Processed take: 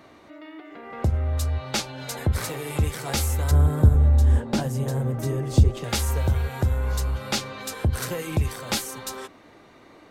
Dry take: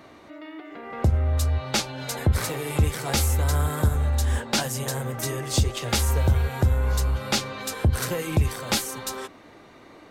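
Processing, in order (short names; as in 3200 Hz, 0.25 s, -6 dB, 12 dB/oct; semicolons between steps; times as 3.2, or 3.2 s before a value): 3.51–5.84 tilt shelf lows +8.5 dB, about 760 Hz; gain -2 dB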